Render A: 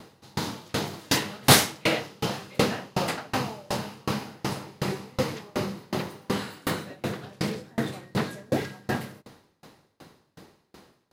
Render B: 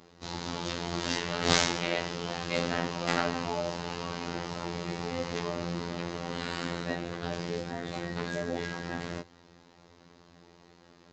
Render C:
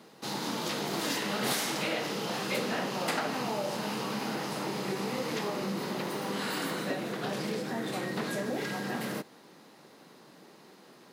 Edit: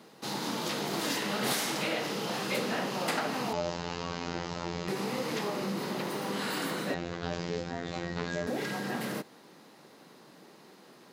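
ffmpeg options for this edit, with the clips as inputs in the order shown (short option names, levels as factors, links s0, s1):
-filter_complex "[1:a]asplit=2[s0][s1];[2:a]asplit=3[s2][s3][s4];[s2]atrim=end=3.532[s5];[s0]atrim=start=3.528:end=4.882[s6];[s3]atrim=start=4.878:end=6.942[s7];[s1]atrim=start=6.938:end=8.472[s8];[s4]atrim=start=8.468[s9];[s5][s6]acrossfade=d=0.004:c1=hsin:c2=hsin[s10];[s10][s7]acrossfade=d=0.004:c1=hsin:c2=hsin[s11];[s11][s8]acrossfade=d=0.004:c1=hsin:c2=hsin[s12];[s12][s9]acrossfade=d=0.004:c1=hsin:c2=hsin"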